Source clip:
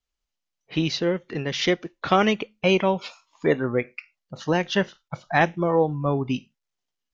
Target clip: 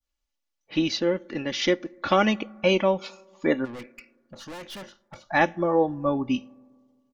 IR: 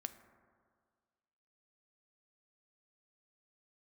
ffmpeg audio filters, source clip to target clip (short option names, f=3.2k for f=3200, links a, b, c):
-filter_complex "[0:a]aecho=1:1:3.5:0.6,adynamicequalizer=threshold=0.0141:dfrequency=2700:dqfactor=0.77:tfrequency=2700:tqfactor=0.77:attack=5:release=100:ratio=0.375:range=2:mode=cutabove:tftype=bell,asplit=3[a][b][c];[a]afade=t=out:st=3.64:d=0.02[d];[b]aeval=exprs='(tanh(56.2*val(0)+0.3)-tanh(0.3))/56.2':c=same,afade=t=in:st=3.64:d=0.02,afade=t=out:st=5.26:d=0.02[e];[c]afade=t=in:st=5.26:d=0.02[f];[d][e][f]amix=inputs=3:normalize=0,asplit=2[g][h];[1:a]atrim=start_sample=2205[i];[h][i]afir=irnorm=-1:irlink=0,volume=-10.5dB[j];[g][j]amix=inputs=2:normalize=0,volume=-3.5dB"